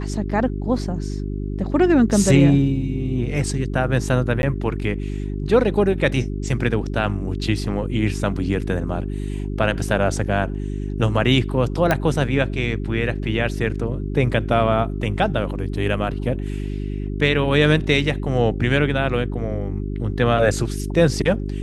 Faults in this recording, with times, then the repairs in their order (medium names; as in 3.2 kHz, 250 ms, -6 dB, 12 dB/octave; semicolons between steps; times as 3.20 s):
hum 50 Hz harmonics 8 -26 dBFS
4.42–4.43 s: dropout 11 ms
11.91 s: pop -5 dBFS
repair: de-click; de-hum 50 Hz, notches 8; interpolate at 4.42 s, 11 ms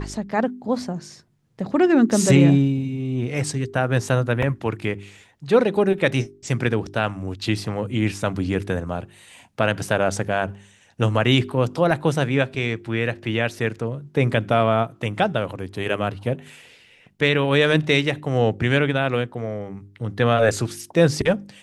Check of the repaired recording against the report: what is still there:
nothing left